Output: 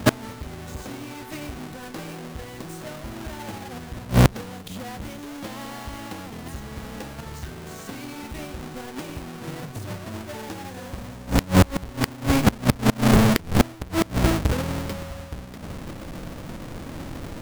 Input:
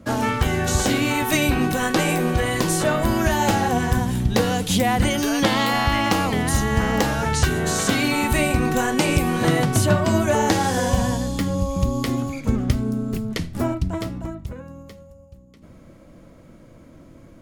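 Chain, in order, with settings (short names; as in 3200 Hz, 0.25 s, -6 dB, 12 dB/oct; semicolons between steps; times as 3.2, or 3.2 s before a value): half-waves squared off; flipped gate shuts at -14 dBFS, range -27 dB; gain +6.5 dB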